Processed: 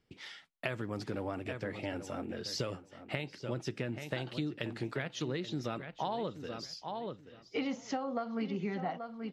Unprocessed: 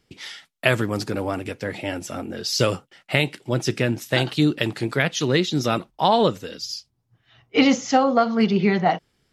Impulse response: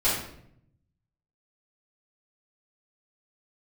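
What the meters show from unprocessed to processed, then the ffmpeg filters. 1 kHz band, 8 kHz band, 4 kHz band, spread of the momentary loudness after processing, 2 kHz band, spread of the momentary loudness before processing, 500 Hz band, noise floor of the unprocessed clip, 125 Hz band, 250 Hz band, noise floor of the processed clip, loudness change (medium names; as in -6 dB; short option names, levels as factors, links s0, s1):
-16.5 dB, -17.5 dB, -17.0 dB, 5 LU, -16.5 dB, 12 LU, -15.5 dB, -70 dBFS, -14.5 dB, -15.5 dB, -61 dBFS, -16.0 dB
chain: -filter_complex "[0:a]aemphasis=mode=reproduction:type=50kf,asplit=2[s0][s1];[s1]adelay=830,lowpass=f=4800:p=1,volume=0.224,asplit=2[s2][s3];[s3]adelay=830,lowpass=f=4800:p=1,volume=0.16[s4];[s2][s4]amix=inputs=2:normalize=0[s5];[s0][s5]amix=inputs=2:normalize=0,acompressor=threshold=0.0631:ratio=6,volume=0.376"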